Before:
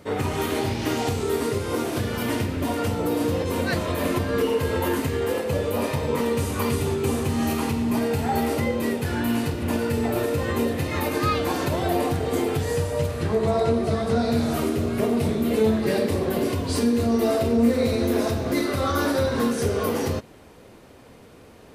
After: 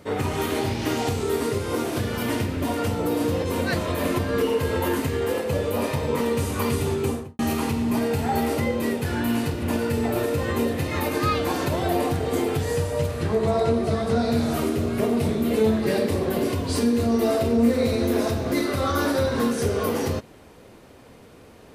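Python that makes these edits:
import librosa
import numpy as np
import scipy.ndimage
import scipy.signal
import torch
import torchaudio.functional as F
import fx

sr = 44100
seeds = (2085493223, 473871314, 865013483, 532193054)

y = fx.studio_fade_out(x, sr, start_s=7.0, length_s=0.39)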